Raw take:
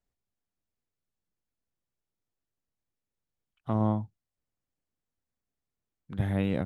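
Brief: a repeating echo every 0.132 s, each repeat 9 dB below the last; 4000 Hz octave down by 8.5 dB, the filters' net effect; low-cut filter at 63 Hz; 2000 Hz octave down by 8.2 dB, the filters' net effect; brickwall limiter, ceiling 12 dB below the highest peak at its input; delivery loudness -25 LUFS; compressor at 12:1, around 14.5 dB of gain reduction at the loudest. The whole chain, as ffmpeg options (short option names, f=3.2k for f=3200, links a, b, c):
-af "highpass=63,equalizer=f=2k:t=o:g=-8.5,equalizer=f=4k:t=o:g=-7.5,acompressor=threshold=-36dB:ratio=12,alimiter=level_in=11dB:limit=-24dB:level=0:latency=1,volume=-11dB,aecho=1:1:132|264|396|528:0.355|0.124|0.0435|0.0152,volume=21.5dB"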